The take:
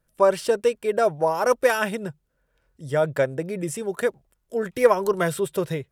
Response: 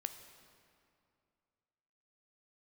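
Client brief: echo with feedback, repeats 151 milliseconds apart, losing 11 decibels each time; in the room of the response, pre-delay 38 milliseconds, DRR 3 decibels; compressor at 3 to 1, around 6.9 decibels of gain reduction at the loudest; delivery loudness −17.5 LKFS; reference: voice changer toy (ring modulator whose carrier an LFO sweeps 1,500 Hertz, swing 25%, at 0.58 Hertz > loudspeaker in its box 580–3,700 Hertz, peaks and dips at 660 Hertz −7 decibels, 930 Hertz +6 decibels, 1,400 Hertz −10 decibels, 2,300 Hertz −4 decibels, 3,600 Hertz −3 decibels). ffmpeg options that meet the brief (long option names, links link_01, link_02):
-filter_complex "[0:a]acompressor=threshold=-20dB:ratio=3,aecho=1:1:151|302|453:0.282|0.0789|0.0221,asplit=2[link_01][link_02];[1:a]atrim=start_sample=2205,adelay=38[link_03];[link_02][link_03]afir=irnorm=-1:irlink=0,volume=-1.5dB[link_04];[link_01][link_04]amix=inputs=2:normalize=0,aeval=exprs='val(0)*sin(2*PI*1500*n/s+1500*0.25/0.58*sin(2*PI*0.58*n/s))':channel_layout=same,highpass=580,equalizer=frequency=660:width_type=q:width=4:gain=-7,equalizer=frequency=930:width_type=q:width=4:gain=6,equalizer=frequency=1400:width_type=q:width=4:gain=-10,equalizer=frequency=2300:width_type=q:width=4:gain=-4,equalizer=frequency=3600:width_type=q:width=4:gain=-3,lowpass=frequency=3700:width=0.5412,lowpass=frequency=3700:width=1.3066,volume=11.5dB"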